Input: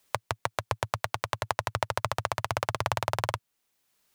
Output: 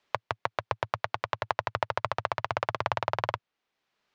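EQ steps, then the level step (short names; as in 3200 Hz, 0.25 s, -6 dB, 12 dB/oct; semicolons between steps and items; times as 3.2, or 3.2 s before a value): air absorption 210 m; low shelf 190 Hz -9.5 dB; +2.0 dB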